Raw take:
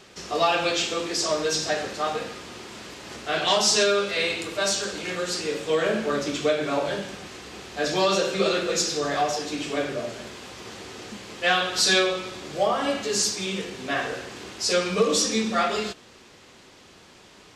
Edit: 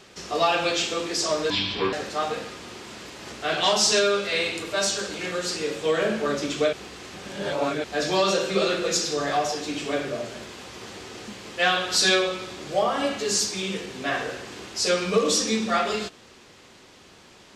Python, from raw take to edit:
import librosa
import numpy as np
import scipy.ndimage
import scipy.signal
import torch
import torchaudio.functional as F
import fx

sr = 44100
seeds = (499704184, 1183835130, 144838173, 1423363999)

y = fx.edit(x, sr, fx.speed_span(start_s=1.5, length_s=0.27, speed=0.63),
    fx.reverse_span(start_s=6.57, length_s=1.11), tone=tone)